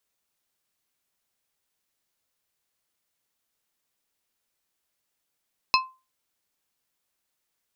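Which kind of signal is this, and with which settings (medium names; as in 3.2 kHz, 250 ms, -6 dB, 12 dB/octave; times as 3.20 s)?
glass hit plate, lowest mode 1.04 kHz, modes 4, decay 0.29 s, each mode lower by 1 dB, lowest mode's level -15.5 dB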